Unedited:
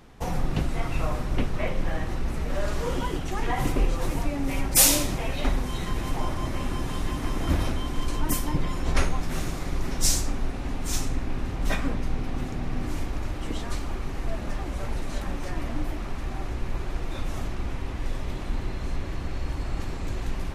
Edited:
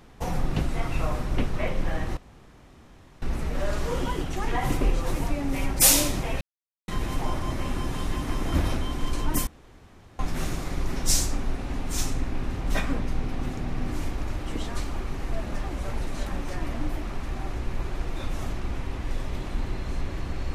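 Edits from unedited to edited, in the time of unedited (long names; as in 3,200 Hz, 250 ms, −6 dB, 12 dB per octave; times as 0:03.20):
0:02.17: splice in room tone 1.05 s
0:05.36–0:05.83: silence
0:08.42–0:09.14: fill with room tone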